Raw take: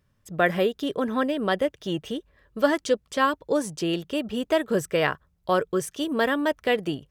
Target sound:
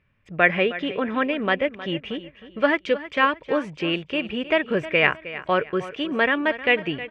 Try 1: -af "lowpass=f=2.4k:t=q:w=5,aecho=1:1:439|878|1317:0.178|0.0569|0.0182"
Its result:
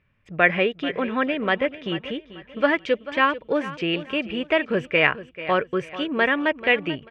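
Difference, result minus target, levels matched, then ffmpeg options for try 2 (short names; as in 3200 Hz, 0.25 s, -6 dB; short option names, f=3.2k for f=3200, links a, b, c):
echo 0.126 s late
-af "lowpass=f=2.4k:t=q:w=5,aecho=1:1:313|626|939:0.178|0.0569|0.0182"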